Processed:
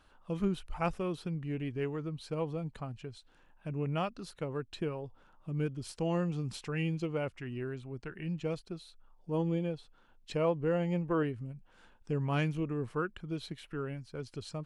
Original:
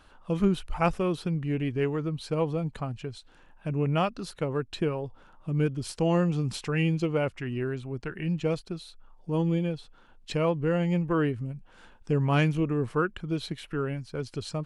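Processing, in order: 8.55–11.23 dynamic EQ 600 Hz, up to +5 dB, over -38 dBFS, Q 0.7; gain -7.5 dB

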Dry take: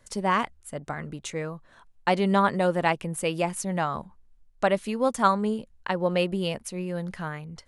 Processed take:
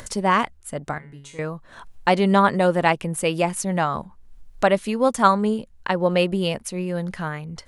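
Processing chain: upward compressor, threshold -34 dBFS; 0.98–1.39 resonator 140 Hz, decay 0.45 s, harmonics all, mix 90%; gain +5 dB

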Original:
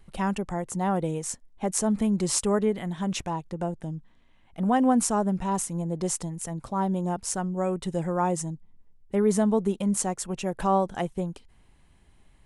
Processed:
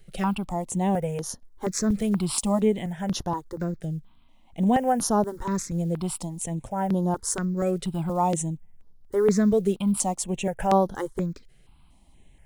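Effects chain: block floating point 7-bit; step phaser 4.2 Hz 260–7900 Hz; gain +4 dB

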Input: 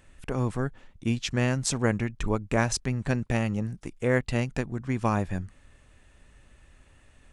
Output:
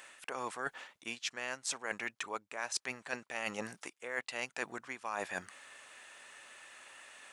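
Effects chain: HPF 820 Hz 12 dB/oct; reverse; compressor 12:1, threshold -45 dBFS, peak gain reduction 22.5 dB; reverse; gain +10.5 dB

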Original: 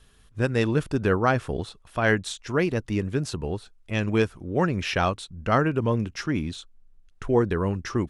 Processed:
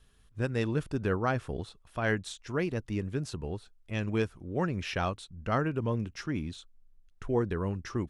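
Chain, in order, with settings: low shelf 190 Hz +3 dB; gain -8 dB

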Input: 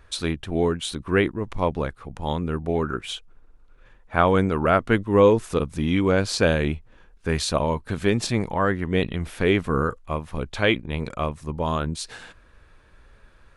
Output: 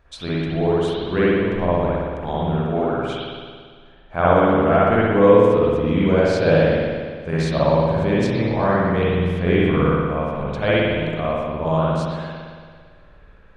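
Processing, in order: fifteen-band EQ 160 Hz +5 dB, 630 Hz +7 dB, 10000 Hz -9 dB; spring tank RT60 1.8 s, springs 56 ms, chirp 70 ms, DRR -8.5 dB; gain -7 dB

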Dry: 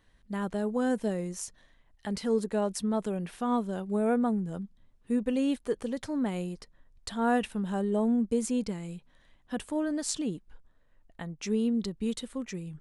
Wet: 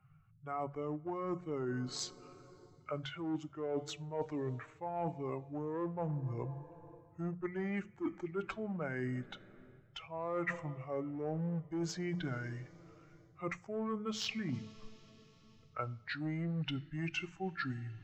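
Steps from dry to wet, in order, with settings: per-bin expansion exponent 1.5; low shelf 320 Hz -6.5 dB; notches 50/100/150/200/250/300 Hz; two-slope reverb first 0.27 s, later 3.7 s, from -18 dB, DRR 17.5 dB; in parallel at -4.5 dB: hard clip -32.5 dBFS, distortion -9 dB; on the sum: three-band isolator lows -12 dB, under 560 Hz, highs -18 dB, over 3500 Hz; reverse; compressor 16:1, threshold -47 dBFS, peak gain reduction 22.5 dB; reverse; band noise 120–230 Hz -79 dBFS; varispeed -29%; gain +12.5 dB

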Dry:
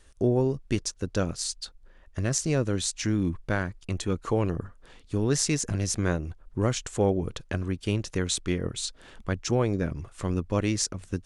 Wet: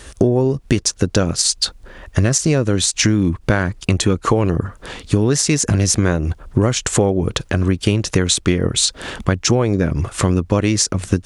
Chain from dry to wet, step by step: HPF 44 Hz; compressor 10:1, threshold -34 dBFS, peak gain reduction 15.5 dB; maximiser +24 dB; gain -2 dB

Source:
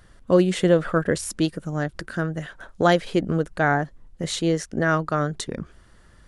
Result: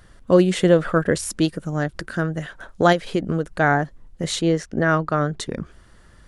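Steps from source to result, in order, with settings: 2.92–3.54 compressor 5:1, threshold -20 dBFS, peak gain reduction 6 dB; 4.41–5.41 high shelf 6400 Hz -12 dB; gain +2.5 dB

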